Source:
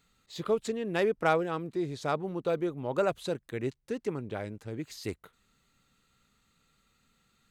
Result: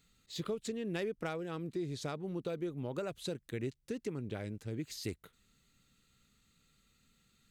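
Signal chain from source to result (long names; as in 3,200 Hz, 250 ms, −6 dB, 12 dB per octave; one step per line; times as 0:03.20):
downward compressor 3 to 1, threshold −33 dBFS, peak gain reduction 10 dB
parametric band 910 Hz −9 dB 1.9 octaves
level +1 dB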